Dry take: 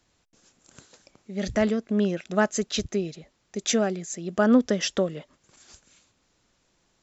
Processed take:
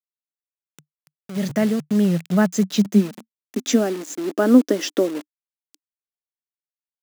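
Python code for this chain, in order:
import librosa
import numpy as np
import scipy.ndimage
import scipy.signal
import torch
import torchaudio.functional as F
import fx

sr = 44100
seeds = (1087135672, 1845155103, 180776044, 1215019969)

y = fx.peak_eq(x, sr, hz=74.0, db=-6.0, octaves=0.99)
y = fx.quant_dither(y, sr, seeds[0], bits=6, dither='none')
y = fx.filter_sweep_highpass(y, sr, from_hz=150.0, to_hz=300.0, start_s=1.95, end_s=4.15, q=7.9)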